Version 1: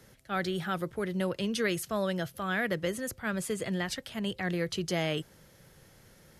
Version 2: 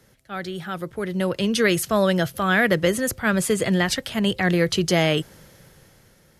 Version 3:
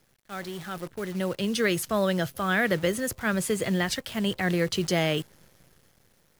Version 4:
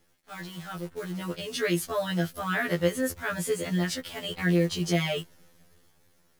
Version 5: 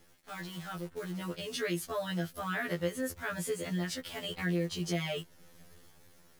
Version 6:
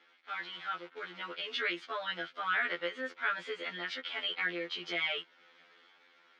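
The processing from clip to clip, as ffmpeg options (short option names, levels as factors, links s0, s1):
-af "dynaudnorm=f=360:g=7:m=3.98"
-af "acrusher=bits=7:dc=4:mix=0:aa=0.000001,volume=0.531"
-af "afftfilt=real='re*2*eq(mod(b,4),0)':imag='im*2*eq(mod(b,4),0)':win_size=2048:overlap=0.75"
-af "acompressor=threshold=0.00158:ratio=1.5,volume=1.68"
-af "highpass=f=330:w=0.5412,highpass=f=330:w=1.3066,equalizer=f=390:t=q:w=4:g=-8,equalizer=f=610:t=q:w=4:g=-6,equalizer=f=1400:t=q:w=4:g=8,equalizer=f=2200:t=q:w=4:g=8,equalizer=f=3300:t=q:w=4:g=6,lowpass=f=4100:w=0.5412,lowpass=f=4100:w=1.3066"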